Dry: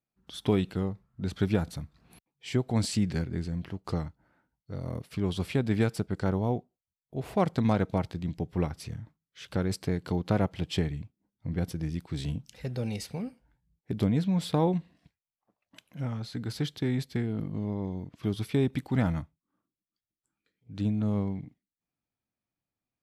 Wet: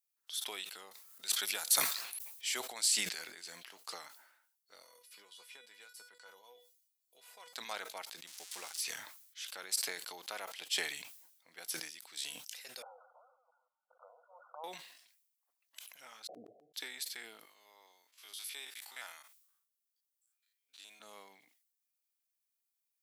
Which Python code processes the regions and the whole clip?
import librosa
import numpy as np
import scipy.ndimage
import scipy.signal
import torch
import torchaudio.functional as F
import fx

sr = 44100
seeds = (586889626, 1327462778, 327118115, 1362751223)

y = fx.chain(x, sr, fx.high_shelf(hz=5400.0, db=6.5),
    fx.transient(attack_db=-3, sustain_db=10),
    fx.band_squash(depth_pct=40), at=(0.91, 2.6))
y = fx.chain(y, sr, fx.high_shelf(hz=5300.0, db=-4.0),
    fx.comb_fb(f0_hz=490.0, decay_s=0.19, harmonics='all', damping=0.0, mix_pct=90),
    fx.band_squash(depth_pct=70), at=(4.83, 7.53))
y = fx.chain(y, sr, fx.crossing_spikes(level_db=-28.0),
    fx.air_absorb(metres=77.0), at=(8.27, 8.81))
y = fx.chain(y, sr, fx.reverse_delay(ms=171, wet_db=-11.0),
    fx.env_flanger(rest_ms=9.3, full_db=-21.0),
    fx.brickwall_bandpass(low_hz=480.0, high_hz=1500.0), at=(12.82, 14.64))
y = fx.chain(y, sr, fx.cheby1_lowpass(hz=740.0, order=10),
    fx.auto_swell(attack_ms=403.0), at=(16.27, 16.74))
y = fx.chain(y, sr, fx.spec_steps(hold_ms=50),
    fx.highpass(hz=1100.0, slope=6), at=(17.45, 21.0))
y = scipy.signal.sosfilt(scipy.signal.butter(2, 590.0, 'highpass', fs=sr, output='sos'), y)
y = np.diff(y, prepend=0.0)
y = fx.sustainer(y, sr, db_per_s=61.0)
y = F.gain(torch.from_numpy(y), 7.0).numpy()